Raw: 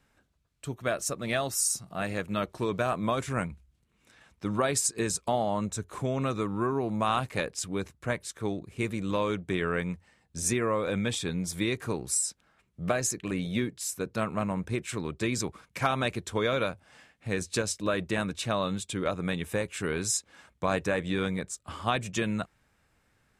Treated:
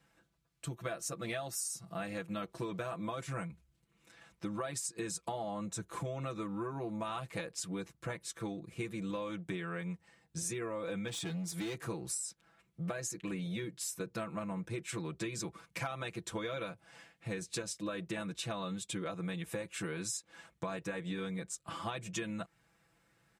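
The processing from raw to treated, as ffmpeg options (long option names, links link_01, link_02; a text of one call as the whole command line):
ffmpeg -i in.wav -filter_complex "[0:a]asplit=3[link_01][link_02][link_03];[link_01]afade=type=out:start_time=11.07:duration=0.02[link_04];[link_02]asoftclip=type=hard:threshold=-29dB,afade=type=in:start_time=11.07:duration=0.02,afade=type=out:start_time=11.82:duration=0.02[link_05];[link_03]afade=type=in:start_time=11.82:duration=0.02[link_06];[link_04][link_05][link_06]amix=inputs=3:normalize=0,highpass=59,aecho=1:1:6:0.94,acompressor=threshold=-32dB:ratio=6,volume=-4dB" out.wav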